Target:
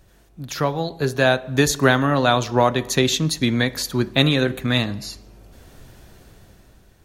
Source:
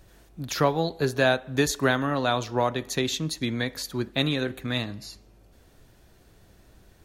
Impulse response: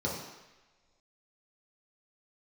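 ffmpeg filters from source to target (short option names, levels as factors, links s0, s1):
-filter_complex "[0:a]dynaudnorm=f=220:g=11:m=5.62,asplit=2[s0][s1];[1:a]atrim=start_sample=2205,afade=t=out:st=0.34:d=0.01,atrim=end_sample=15435[s2];[s1][s2]afir=irnorm=-1:irlink=0,volume=0.0501[s3];[s0][s3]amix=inputs=2:normalize=0"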